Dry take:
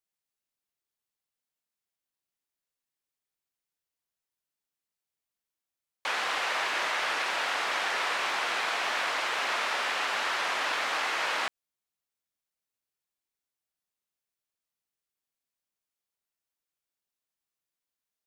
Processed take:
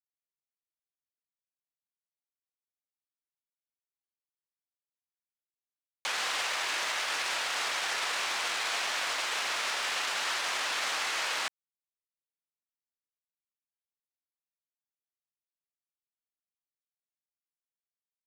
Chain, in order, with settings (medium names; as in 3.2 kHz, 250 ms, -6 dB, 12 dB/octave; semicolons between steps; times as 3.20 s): peaking EQ 8 kHz +11.5 dB 2.4 oct; peak limiter -30 dBFS, peak gain reduction 16 dB; crossover distortion -57.5 dBFS; trim +7.5 dB